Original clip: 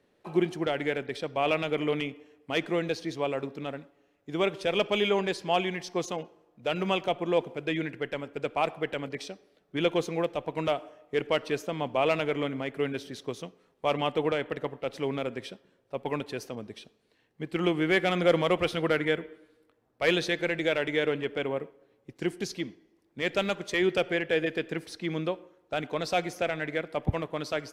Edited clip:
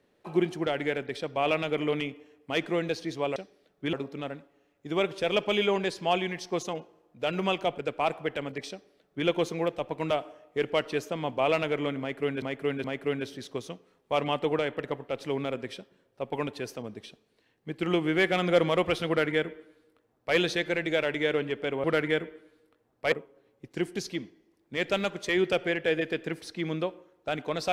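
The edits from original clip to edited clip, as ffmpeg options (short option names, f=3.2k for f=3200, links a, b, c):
-filter_complex "[0:a]asplit=8[a][b][c][d][e][f][g][h];[a]atrim=end=3.362[i];[b]atrim=start=9.268:end=9.842[j];[c]atrim=start=3.358:end=7.212[k];[d]atrim=start=8.348:end=12.992[l];[e]atrim=start=12.568:end=12.992[m];[f]atrim=start=12.568:end=21.572[n];[g]atrim=start=18.808:end=20.092[o];[h]atrim=start=21.568[p];[i][j]acrossfade=d=0.004:c1=hsin:c2=hsin[q];[q][k]acrossfade=d=0.004:c1=hsin:c2=hsin[r];[r][l]acrossfade=d=0.004:c1=hsin:c2=hsin[s];[s][m]acrossfade=d=0.004:c1=hsin:c2=hsin[t];[t][n]acrossfade=d=0.004:c1=hsin:c2=hsin[u];[u][o]acrossfade=d=0.004:c1=hsin:c2=hsin[v];[v][p]acrossfade=d=0.004:c1=hsin:c2=hsin"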